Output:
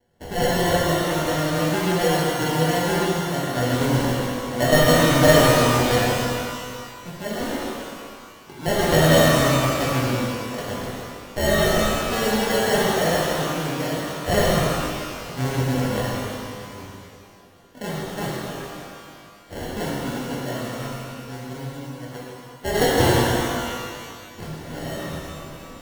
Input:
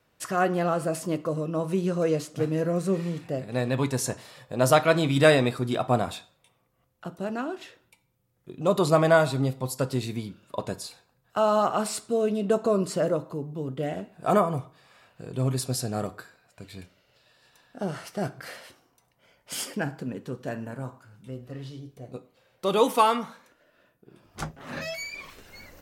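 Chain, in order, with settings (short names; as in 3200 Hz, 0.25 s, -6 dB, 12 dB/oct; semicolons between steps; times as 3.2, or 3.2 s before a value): sample-and-hold 36×; shimmer reverb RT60 2.1 s, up +12 st, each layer -8 dB, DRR -6.5 dB; gain -3 dB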